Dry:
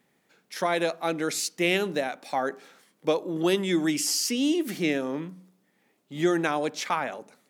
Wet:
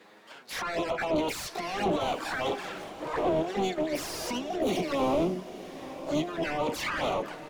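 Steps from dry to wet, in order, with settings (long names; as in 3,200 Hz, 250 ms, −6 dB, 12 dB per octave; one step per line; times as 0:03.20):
phase distortion by the signal itself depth 0.081 ms
high-pass filter 62 Hz 24 dB per octave
notch filter 420 Hz, Q 12
compressor whose output falls as the input rises −31 dBFS, ratio −0.5
pitch-shifted copies added −4 semitones −16 dB, +4 semitones −10 dB, +12 semitones −1 dB
mid-hump overdrive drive 28 dB, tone 1,400 Hz, clips at −10 dBFS
flanger swept by the level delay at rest 11.6 ms, full sweep at −17.5 dBFS
feedback delay with all-pass diffusion 936 ms, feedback 51%, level −14 dB
level −6 dB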